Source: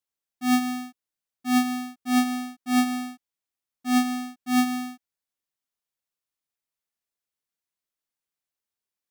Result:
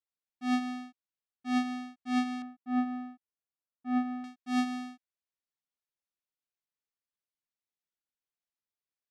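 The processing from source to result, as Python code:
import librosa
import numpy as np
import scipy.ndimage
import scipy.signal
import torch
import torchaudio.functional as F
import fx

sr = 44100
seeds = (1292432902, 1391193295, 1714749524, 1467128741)

y = fx.lowpass(x, sr, hz=fx.steps((0.0, 4500.0), (2.42, 1400.0), (4.24, 5400.0)), slope=12)
y = y * 10.0 ** (-7.5 / 20.0)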